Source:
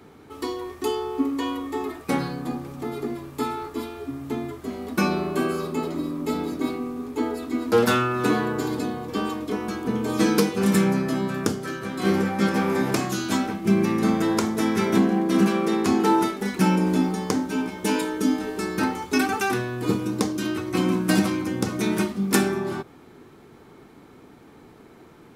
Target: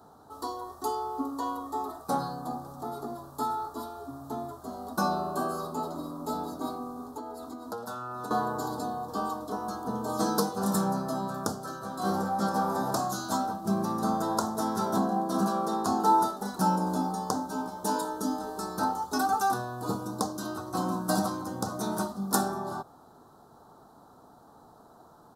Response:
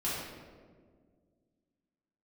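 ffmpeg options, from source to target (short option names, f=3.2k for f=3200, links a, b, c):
-filter_complex "[0:a]asettb=1/sr,asplit=3[a][b][c];[a]atrim=end=7.044[d];[b]atrim=start=7.04:end=8.31,asetpts=PTS-STARTPTS,afade=t=in:d=0.004:c=qsin,afade=t=out:st=1.266:d=0.004:c=qsin,acompressor=threshold=-29dB:ratio=10[e];[c]atrim=start=8.306[f];[d][e]acrossfade=d=0.004:c1=hsin:c2=qsin[g];[g][f]acrossfade=d=0.004:c1=qsin:c2=hsin,firequalizer=gain_entry='entry(220,0);entry(370,-4);entry(680,12);entry(1400,5);entry(2200,-25);entry(3900,3);entry(12000,7)':delay=0.05:min_phase=1,volume=-8.5dB"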